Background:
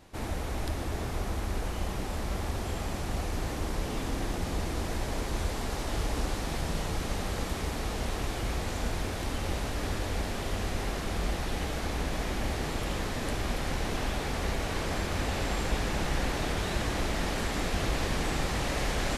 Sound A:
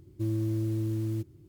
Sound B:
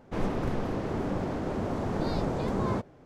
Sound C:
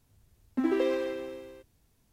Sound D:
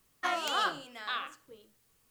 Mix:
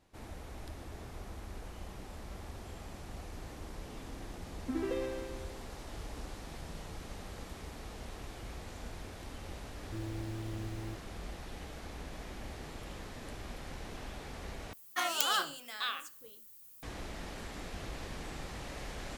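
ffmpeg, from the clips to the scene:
-filter_complex "[0:a]volume=-13dB[a];[4:a]aemphasis=mode=production:type=75fm[b];[a]asplit=2[c][d];[c]atrim=end=14.734[e];[b]atrim=end=2.1,asetpts=PTS-STARTPTS,volume=-3dB[f];[d]atrim=start=16.826[g];[3:a]atrim=end=2.12,asetpts=PTS-STARTPTS,volume=-8.5dB,afade=t=in:d=0.004:c=hsin,afade=t=out:st=2.116:d=0.004:c=hsin,adelay=4110[h];[1:a]atrim=end=1.48,asetpts=PTS-STARTPTS,volume=-11.5dB,afade=t=in:d=0.004:c=hsin,afade=t=out:st=1.476:d=0.004:c=hsin,adelay=9730[i];[e][f]acrossfade=d=0.004:c1=hsin:c2=hsin[j];[j][g]acrossfade=d=0.004:c1=hsin:c2=hsin[k];[k][h][i]amix=inputs=3:normalize=0"

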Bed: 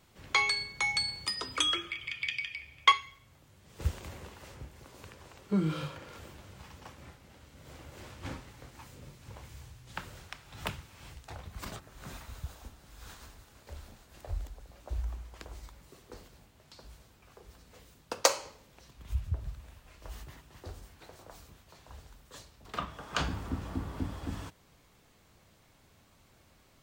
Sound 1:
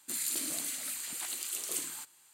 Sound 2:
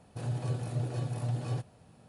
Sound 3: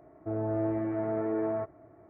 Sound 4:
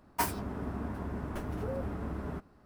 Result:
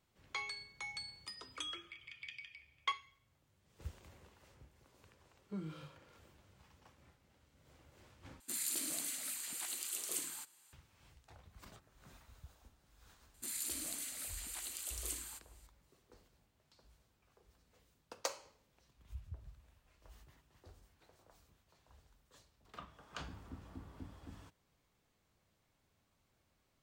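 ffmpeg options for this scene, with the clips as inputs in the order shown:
-filter_complex "[1:a]asplit=2[a][b];[0:a]volume=-15dB,asplit=2[c][d];[c]atrim=end=8.404[e];[a]atrim=end=2.33,asetpts=PTS-STARTPTS,volume=-4.5dB[f];[d]atrim=start=10.726[g];[b]atrim=end=2.33,asetpts=PTS-STARTPTS,volume=-7dB,afade=t=in:d=0.004:c=hsin,afade=t=out:st=2.326:d=0.004:c=hsin,adelay=13340[h];[e][f]acrossfade=d=0.004:c1=hsin:c2=hsin[i];[i][g]acrossfade=d=0.004:c1=hsin:c2=hsin[j];[j][h]amix=inputs=2:normalize=0"

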